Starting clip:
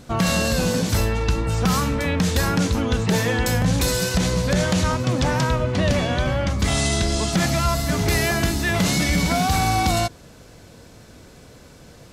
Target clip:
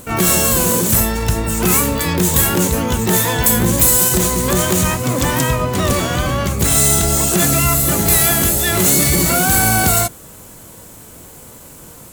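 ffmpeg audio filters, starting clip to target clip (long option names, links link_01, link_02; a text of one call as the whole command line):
ffmpeg -i in.wav -filter_complex "[0:a]aexciter=amount=6.3:drive=6.5:freq=7100,acontrast=37,asplit=2[link_01][link_02];[link_02]asetrate=88200,aresample=44100,atempo=0.5,volume=-2dB[link_03];[link_01][link_03]amix=inputs=2:normalize=0,volume=-3.5dB" out.wav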